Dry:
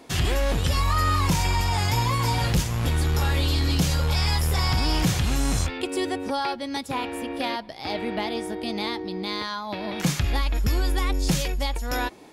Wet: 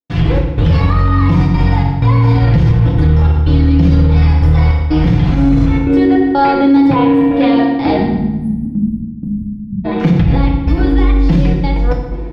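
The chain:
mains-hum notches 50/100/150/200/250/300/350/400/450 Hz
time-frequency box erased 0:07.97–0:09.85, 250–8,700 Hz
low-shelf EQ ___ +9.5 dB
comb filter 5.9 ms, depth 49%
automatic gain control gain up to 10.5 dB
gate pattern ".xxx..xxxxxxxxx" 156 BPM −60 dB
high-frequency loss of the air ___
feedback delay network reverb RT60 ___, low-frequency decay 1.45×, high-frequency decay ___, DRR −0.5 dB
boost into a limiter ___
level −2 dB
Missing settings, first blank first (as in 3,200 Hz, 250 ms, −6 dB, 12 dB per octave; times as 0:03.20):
410 Hz, 330 metres, 1.1 s, 0.8×, +5 dB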